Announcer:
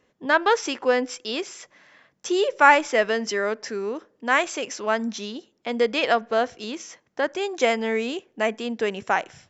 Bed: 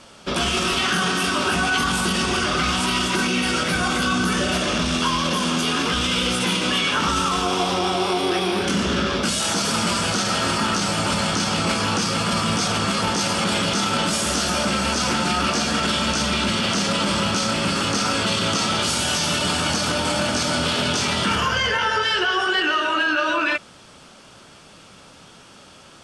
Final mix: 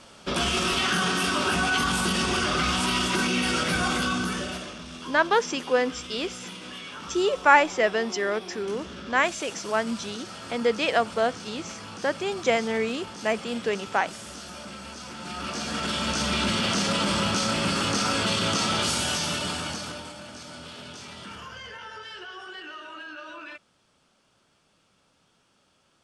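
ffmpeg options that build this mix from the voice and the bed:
ffmpeg -i stem1.wav -i stem2.wav -filter_complex "[0:a]adelay=4850,volume=-2dB[link_01];[1:a]volume=11.5dB,afade=type=out:start_time=3.89:duration=0.86:silence=0.177828,afade=type=in:start_time=15.15:duration=1.27:silence=0.177828,afade=type=out:start_time=18.87:duration=1.27:silence=0.149624[link_02];[link_01][link_02]amix=inputs=2:normalize=0" out.wav

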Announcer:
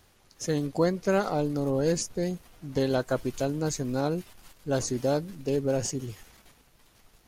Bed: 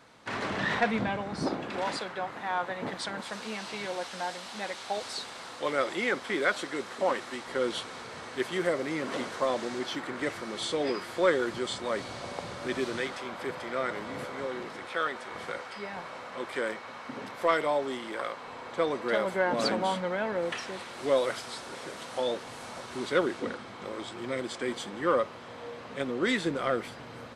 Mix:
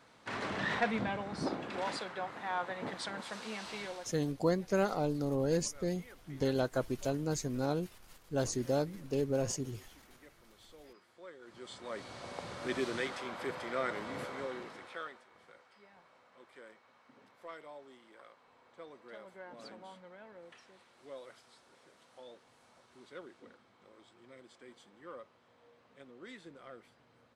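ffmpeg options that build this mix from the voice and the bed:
ffmpeg -i stem1.wav -i stem2.wav -filter_complex "[0:a]adelay=3650,volume=-5.5dB[link_01];[1:a]volume=18.5dB,afade=type=out:start_time=3.79:duration=0.38:silence=0.0794328,afade=type=in:start_time=11.4:duration=1.32:silence=0.0668344,afade=type=out:start_time=14.24:duration=1.03:silence=0.112202[link_02];[link_01][link_02]amix=inputs=2:normalize=0" out.wav

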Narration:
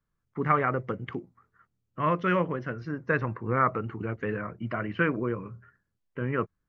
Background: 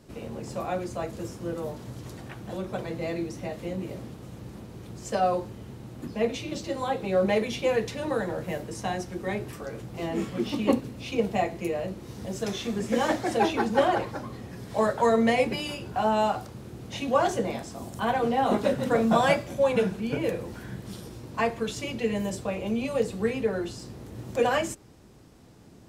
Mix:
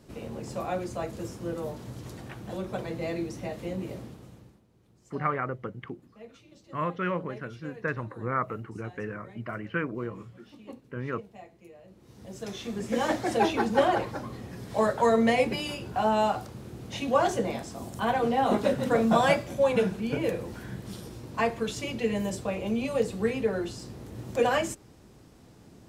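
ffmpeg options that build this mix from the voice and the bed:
ffmpeg -i stem1.wav -i stem2.wav -filter_complex "[0:a]adelay=4750,volume=-4.5dB[link_01];[1:a]volume=20dB,afade=type=out:start_time=3.93:duration=0.67:silence=0.0944061,afade=type=in:start_time=11.84:duration=1.46:silence=0.0891251[link_02];[link_01][link_02]amix=inputs=2:normalize=0" out.wav

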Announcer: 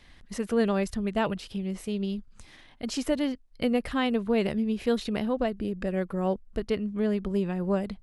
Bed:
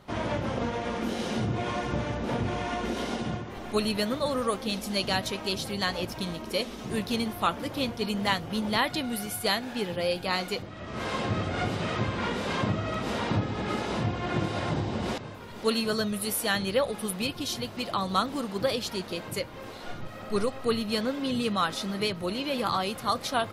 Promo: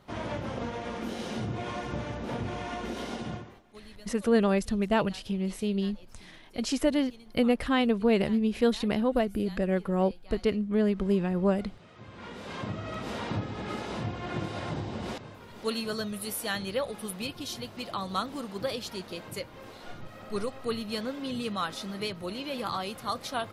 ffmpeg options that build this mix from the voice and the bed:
ffmpeg -i stem1.wav -i stem2.wav -filter_complex "[0:a]adelay=3750,volume=1.5dB[link_01];[1:a]volume=14dB,afade=type=out:start_time=3.37:duration=0.25:silence=0.112202,afade=type=in:start_time=11.95:duration=1.04:silence=0.11885[link_02];[link_01][link_02]amix=inputs=2:normalize=0" out.wav

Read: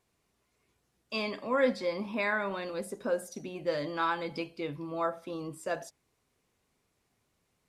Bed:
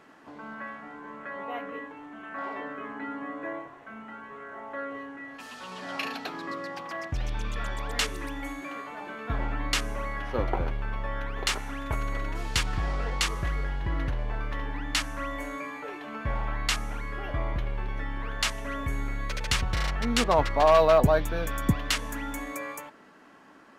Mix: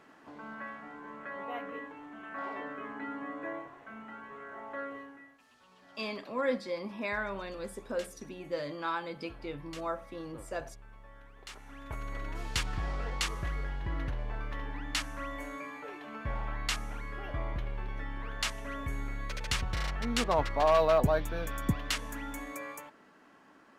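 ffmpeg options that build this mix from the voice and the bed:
ffmpeg -i stem1.wav -i stem2.wav -filter_complex "[0:a]adelay=4850,volume=-4dB[link_01];[1:a]volume=12dB,afade=type=out:start_time=4.81:duration=0.57:silence=0.133352,afade=type=in:start_time=11.46:duration=0.94:silence=0.16788[link_02];[link_01][link_02]amix=inputs=2:normalize=0" out.wav

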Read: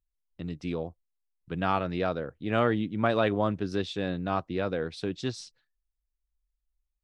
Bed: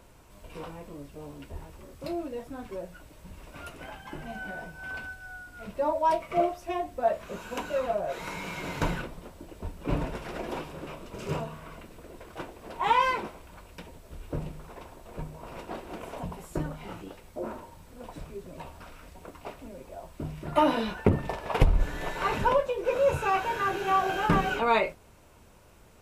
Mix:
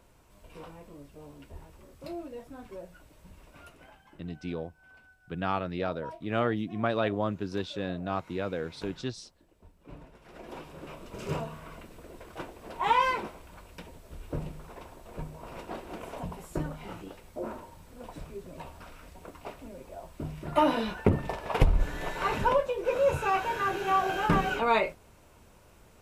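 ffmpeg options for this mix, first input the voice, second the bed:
ffmpeg -i stem1.wav -i stem2.wav -filter_complex "[0:a]adelay=3800,volume=-3dB[link_01];[1:a]volume=12.5dB,afade=type=out:start_time=3.25:duration=0.98:silence=0.211349,afade=type=in:start_time=10.18:duration=1.01:silence=0.125893[link_02];[link_01][link_02]amix=inputs=2:normalize=0" out.wav

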